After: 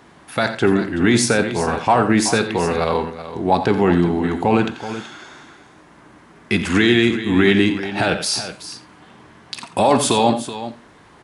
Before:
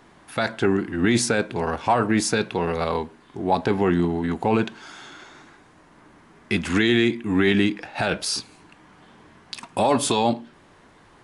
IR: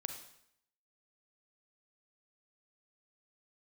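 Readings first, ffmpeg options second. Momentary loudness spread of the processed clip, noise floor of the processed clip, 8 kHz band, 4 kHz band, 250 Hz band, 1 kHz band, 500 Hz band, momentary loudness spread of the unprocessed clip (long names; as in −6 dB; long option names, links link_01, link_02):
15 LU, −48 dBFS, +5.0 dB, +5.0 dB, +5.0 dB, +5.0 dB, +5.0 dB, 12 LU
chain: -filter_complex "[0:a]highpass=43,aecho=1:1:87|378:0.251|0.237,asplit=2[link_01][link_02];[1:a]atrim=start_sample=2205,afade=type=out:start_time=0.14:duration=0.01,atrim=end_sample=6615[link_03];[link_02][link_03]afir=irnorm=-1:irlink=0,volume=-1.5dB[link_04];[link_01][link_04]amix=inputs=2:normalize=0"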